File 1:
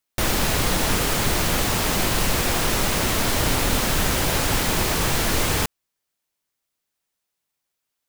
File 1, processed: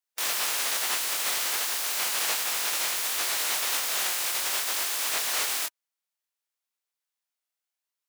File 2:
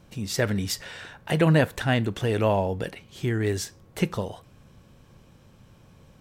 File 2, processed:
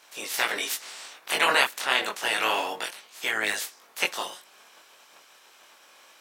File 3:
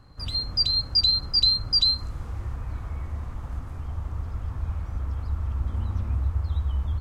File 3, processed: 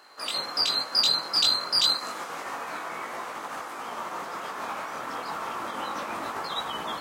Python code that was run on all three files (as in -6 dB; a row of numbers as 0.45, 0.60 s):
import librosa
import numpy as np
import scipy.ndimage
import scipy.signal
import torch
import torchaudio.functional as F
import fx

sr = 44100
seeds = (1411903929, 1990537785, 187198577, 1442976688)

y = fx.spec_clip(x, sr, under_db=25)
y = scipy.signal.sosfilt(scipy.signal.bessel(2, 670.0, 'highpass', norm='mag', fs=sr, output='sos'), y)
y = fx.chorus_voices(y, sr, voices=2, hz=0.29, base_ms=21, depth_ms=4.0, mix_pct=45)
y = y * 10.0 ** (-30 / 20.0) / np.sqrt(np.mean(np.square(y)))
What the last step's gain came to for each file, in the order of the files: -4.0, +3.0, +4.0 dB